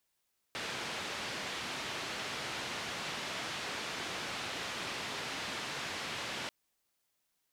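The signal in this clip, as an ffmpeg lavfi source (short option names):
-f lavfi -i "anoisesrc=c=white:d=5.94:r=44100:seed=1,highpass=f=95,lowpass=f=3600,volume=-27.1dB"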